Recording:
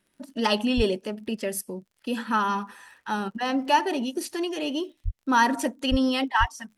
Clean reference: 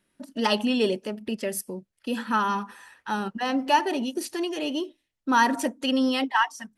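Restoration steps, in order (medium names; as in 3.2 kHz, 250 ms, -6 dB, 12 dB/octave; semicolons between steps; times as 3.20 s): de-click; de-plosive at 0.76/5.04/5.90/6.39 s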